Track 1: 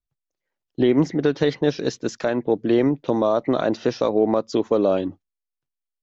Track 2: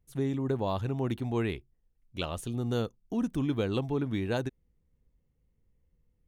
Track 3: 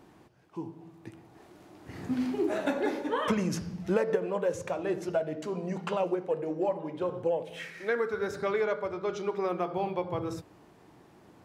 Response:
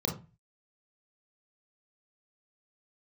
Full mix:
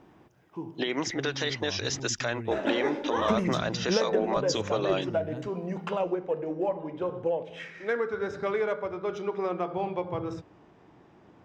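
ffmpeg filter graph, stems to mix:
-filter_complex "[0:a]highpass=f=470:p=1,tiltshelf=f=880:g=-8.5,alimiter=limit=0.1:level=0:latency=1:release=164,volume=1.26[s0];[1:a]bass=f=250:g=10,treble=f=4000:g=-8,adelay=1000,volume=0.178[s1];[2:a]lowpass=f=7600:w=0.5412,lowpass=f=7600:w=1.3066,adynamicsmooth=sensitivity=6:basefreq=5500,volume=1.06,asplit=3[s2][s3][s4];[s2]atrim=end=2,asetpts=PTS-STARTPTS,afade=t=out:st=1.996:d=0.004:c=hsin[s5];[s3]atrim=start=2:end=2.51,asetpts=PTS-STARTPTS,volume=0[s6];[s4]atrim=start=2.51,asetpts=PTS-STARTPTS,afade=t=in:d=0.004:c=hsin[s7];[s5][s6][s7]concat=n=3:v=0:a=1[s8];[s0][s1][s8]amix=inputs=3:normalize=0,bandreject=f=4300:w=9.4"

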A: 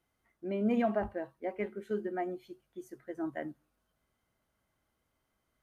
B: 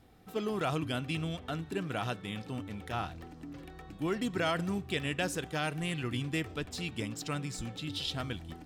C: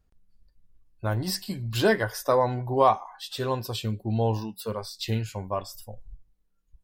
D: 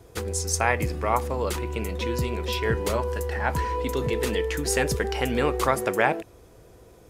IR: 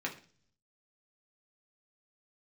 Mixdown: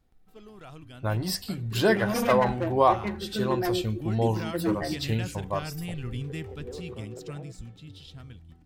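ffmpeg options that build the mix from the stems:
-filter_complex "[0:a]lowshelf=f=160:g=11,aecho=1:1:5.9:0.82,aeval=exprs='0.0596*(abs(mod(val(0)/0.0596+3,4)-2)-1)':c=same,adelay=1450,volume=0.944,asplit=2[s0][s1];[s1]volume=0.473[s2];[1:a]asubboost=boost=4:cutoff=200,dynaudnorm=f=290:g=11:m=2.82,volume=0.178[s3];[2:a]volume=0.944,asplit=2[s4][s5];[3:a]alimiter=limit=0.188:level=0:latency=1:release=151,bandpass=f=410:t=q:w=3.1:csg=0,adelay=1300,volume=0.335[s6];[s5]apad=whole_len=370161[s7];[s6][s7]sidechaincompress=threshold=0.00631:ratio=8:attack=16:release=559[s8];[4:a]atrim=start_sample=2205[s9];[s2][s9]afir=irnorm=-1:irlink=0[s10];[s0][s3][s4][s8][s10]amix=inputs=5:normalize=0"

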